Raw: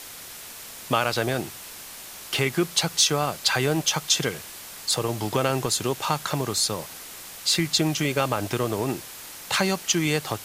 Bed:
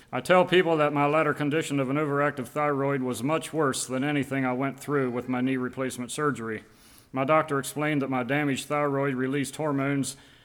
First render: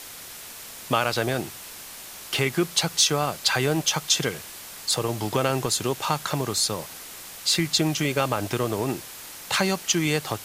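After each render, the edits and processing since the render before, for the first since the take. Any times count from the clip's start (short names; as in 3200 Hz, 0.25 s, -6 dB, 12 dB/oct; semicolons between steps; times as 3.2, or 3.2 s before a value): nothing audible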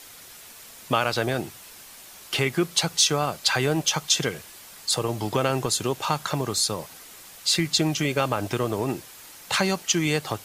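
denoiser 6 dB, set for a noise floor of -41 dBFS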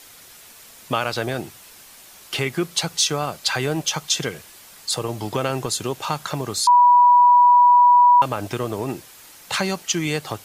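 6.67–8.22 bleep 976 Hz -9 dBFS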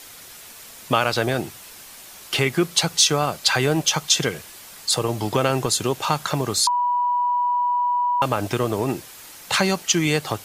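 negative-ratio compressor -16 dBFS, ratio -0.5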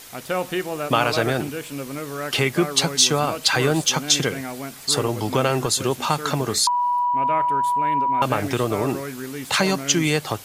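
add bed -5 dB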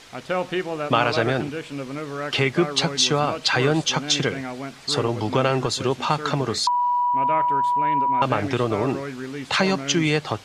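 LPF 4800 Hz 12 dB/oct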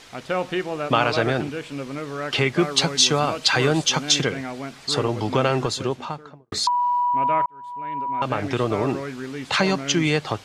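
2.59–4.22 high shelf 5000 Hz +6 dB; 5.6–6.52 studio fade out; 7.46–8.66 fade in linear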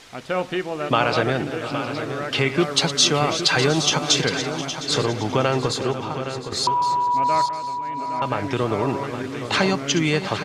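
regenerating reverse delay 0.355 s, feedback 57%, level -11.5 dB; on a send: echo 0.816 s -10 dB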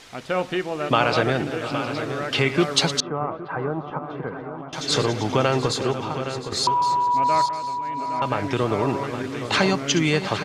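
3–4.73 ladder low-pass 1400 Hz, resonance 35%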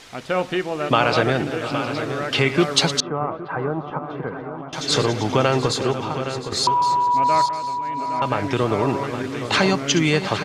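gain +2 dB; limiter -3 dBFS, peak gain reduction 1 dB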